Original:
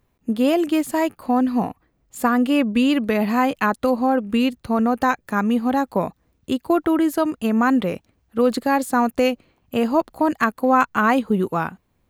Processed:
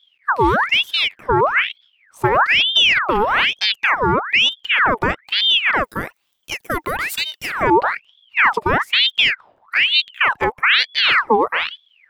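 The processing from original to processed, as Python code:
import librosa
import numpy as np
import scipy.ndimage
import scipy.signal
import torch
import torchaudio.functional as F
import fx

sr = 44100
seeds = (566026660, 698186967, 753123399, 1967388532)

y = fx.tilt_eq(x, sr, slope=fx.steps((0.0, -2.5), (5.83, 2.5), (7.61, -3.0)))
y = fx.ring_lfo(y, sr, carrier_hz=2000.0, swing_pct=70, hz=1.1)
y = y * librosa.db_to_amplitude(1.5)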